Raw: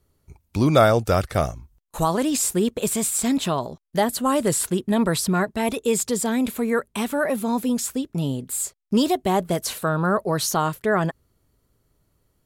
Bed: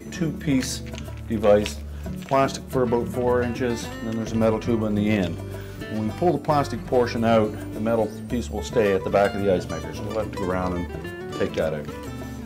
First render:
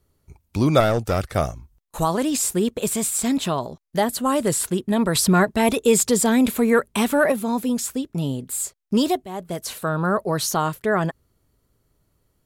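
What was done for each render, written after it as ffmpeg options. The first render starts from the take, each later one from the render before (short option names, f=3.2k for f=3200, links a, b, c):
-filter_complex "[0:a]asettb=1/sr,asplit=3[a][b][c];[a]atrim=end=0.804[d];[b]atrim=start=0.8:end=1.36,asetpts=PTS-STARTPTS,afade=t=in:d=0.004:c=qsin,afade=t=out:st=0.556:d=0.004:c=qsin,aeval=exprs='(tanh(4.47*val(0)+0.35)-tanh(0.35))/4.47':c=same[e];[c]atrim=start=1.356[f];[d][e]acrossfade=d=0.004:c1=hsin:c2=qsin[g];[g][f]acrossfade=d=0.004:c1=qsin:c2=hsin,asettb=1/sr,asplit=3[h][i][j];[h]atrim=end=5.154[k];[i]atrim=start=5.15:end=7.32,asetpts=PTS-STARTPTS,afade=t=in:d=0.004:c=qsin,afade=t=out:st=2.166:d=0.004:c=qsin,acontrast=28[l];[j]atrim=start=7.316[m];[k][l]acrossfade=d=0.004:c1=hsin:c2=qsin[n];[n][m]acrossfade=d=0.004:c1=qsin:c2=hsin,asplit=2[o][p];[o]atrim=end=9.25,asetpts=PTS-STARTPTS,afade=t=out:st=9.246:d=0.004:c=hsin:silence=0.158489[q];[p]atrim=start=9.25,asetpts=PTS-STARTPTS,afade=t=in:d=0.98:c=qsin:silence=0.158489[r];[q][r]concat=n=2:v=0:a=1"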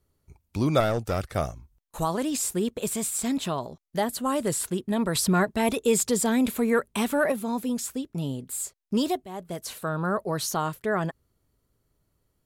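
-af "volume=-5.5dB"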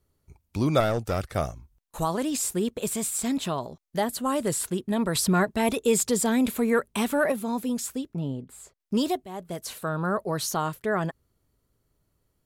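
-filter_complex "[0:a]asettb=1/sr,asplit=3[a][b][c];[a]atrim=end=8.144[d];[b]atrim=start=8.14:end=8.8,asetpts=PTS-STARTPTS,afade=t=in:d=0.004:c=qsin,afade=t=out:st=0.656:d=0.004:c=qsin,lowpass=f=1.4k:p=1[e];[c]atrim=start=8.796[f];[d][e]acrossfade=d=0.004:c1=hsin:c2=qsin[g];[g][f]acrossfade=d=0.004:c1=qsin:c2=hsin"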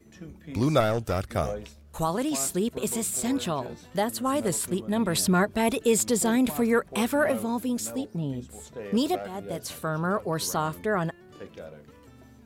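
-filter_complex "[1:a]volume=-18dB[a];[0:a][a]amix=inputs=2:normalize=0"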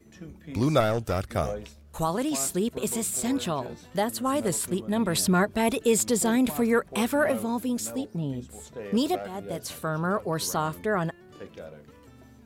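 -af anull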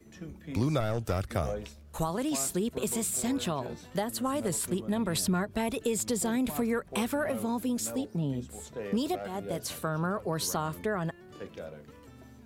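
-filter_complex "[0:a]acrossover=split=130[a][b];[b]acompressor=threshold=-27dB:ratio=6[c];[a][c]amix=inputs=2:normalize=0"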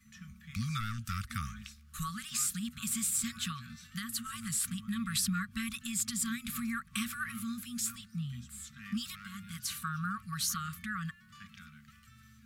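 -af "afftfilt=real='re*(1-between(b*sr/4096,240,1100))':imag='im*(1-between(b*sr/4096,240,1100))':win_size=4096:overlap=0.75,lowshelf=f=420:g=-6"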